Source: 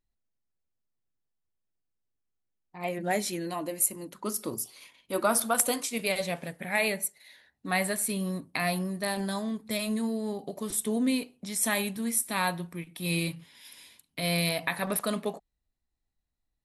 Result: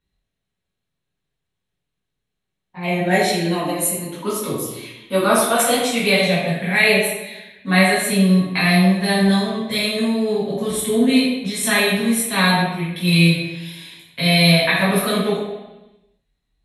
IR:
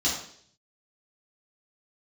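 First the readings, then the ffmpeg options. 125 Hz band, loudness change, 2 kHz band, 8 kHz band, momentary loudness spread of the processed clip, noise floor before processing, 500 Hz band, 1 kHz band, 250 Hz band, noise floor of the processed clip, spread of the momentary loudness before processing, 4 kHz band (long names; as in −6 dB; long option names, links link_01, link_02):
+16.5 dB, +12.5 dB, +14.0 dB, +5.5 dB, 12 LU, −82 dBFS, +12.5 dB, +11.0 dB, +14.0 dB, −79 dBFS, 10 LU, +15.0 dB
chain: -filter_complex "[1:a]atrim=start_sample=2205,asetrate=25137,aresample=44100[link_01];[0:a][link_01]afir=irnorm=-1:irlink=0,volume=-3.5dB"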